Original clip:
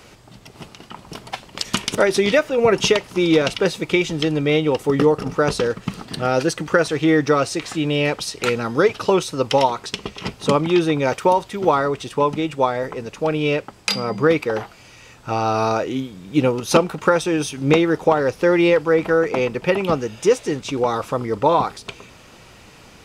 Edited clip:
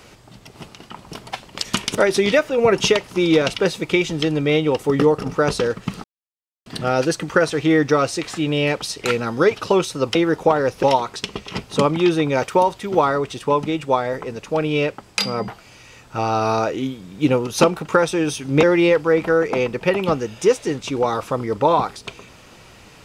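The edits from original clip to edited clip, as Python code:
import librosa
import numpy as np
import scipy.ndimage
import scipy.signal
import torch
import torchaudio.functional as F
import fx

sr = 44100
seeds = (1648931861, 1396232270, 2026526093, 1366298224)

y = fx.edit(x, sr, fx.insert_silence(at_s=6.04, length_s=0.62),
    fx.cut(start_s=14.18, length_s=0.43),
    fx.move(start_s=17.76, length_s=0.68, to_s=9.53), tone=tone)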